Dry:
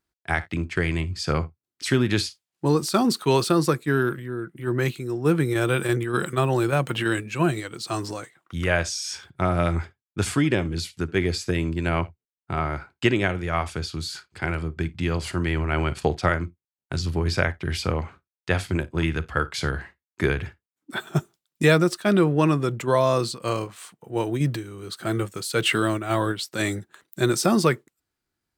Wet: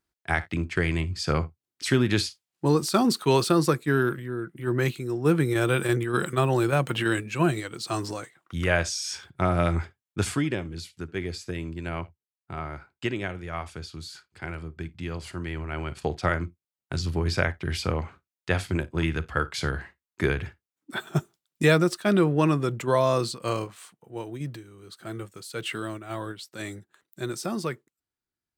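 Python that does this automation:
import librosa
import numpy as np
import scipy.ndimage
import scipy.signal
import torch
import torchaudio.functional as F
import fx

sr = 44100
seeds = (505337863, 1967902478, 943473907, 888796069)

y = fx.gain(x, sr, db=fx.line((10.18, -1.0), (10.65, -8.5), (15.84, -8.5), (16.38, -2.0), (23.63, -2.0), (24.23, -10.5)))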